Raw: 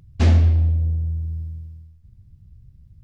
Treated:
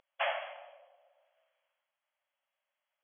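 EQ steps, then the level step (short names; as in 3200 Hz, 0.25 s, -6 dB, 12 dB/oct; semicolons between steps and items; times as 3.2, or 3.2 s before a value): brick-wall FIR band-pass 540–3400 Hz; 0.0 dB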